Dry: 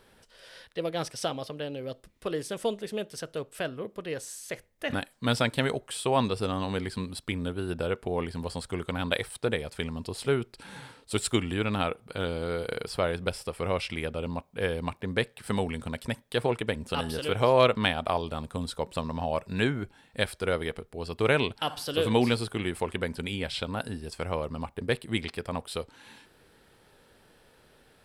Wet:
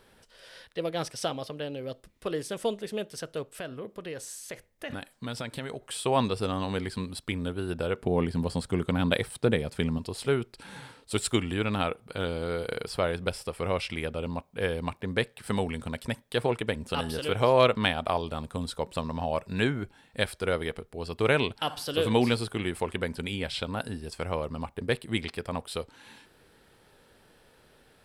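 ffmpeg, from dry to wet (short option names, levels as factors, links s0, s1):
-filter_complex "[0:a]asettb=1/sr,asplit=3[s0][s1][s2];[s0]atrim=end=3.534[s3];[s1]atrim=start=3.53:end=5.85,asetpts=PTS-STARTPTS,afade=t=in:d=0.004:c=qsin,afade=t=out:st=2.316:d=0.004:c=qsin,acompressor=threshold=0.02:ratio=3:attack=3.2:release=140:knee=1:detection=peak[s4];[s2]atrim=start=5.846[s5];[s3][s4]acrossfade=d=0.004:c1=hsin:c2=qsin[s6];[s6][s5]acrossfade=d=0.004:c1=qsin:c2=hsin,asettb=1/sr,asplit=3[s7][s8][s9];[s7]atrim=end=7.974[s10];[s8]atrim=start=7.97:end=9.98,asetpts=PTS-STARTPTS,afade=t=in:d=0.004:c=qsin,afade=t=out:st=2.006:d=0.004:c=qsin,equalizer=f=180:t=o:w=2.2:g=8[s11];[s9]atrim=start=9.976[s12];[s10][s11]acrossfade=d=0.004:c1=hsin:c2=qsin[s13];[s13][s12]acrossfade=d=0.004:c1=qsin:c2=hsin"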